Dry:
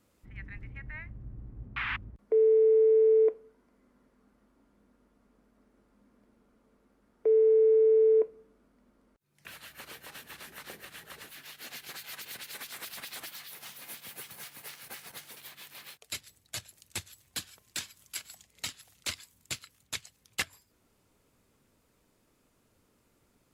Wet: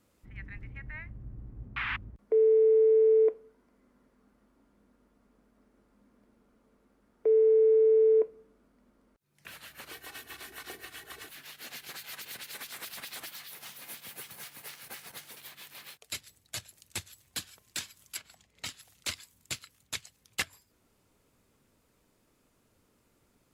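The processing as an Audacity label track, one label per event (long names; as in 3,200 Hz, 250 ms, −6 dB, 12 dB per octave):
9.910000	11.290000	comb filter 2.7 ms
18.160000	18.650000	low-pass filter 2,000 Hz → 3,400 Hz 6 dB per octave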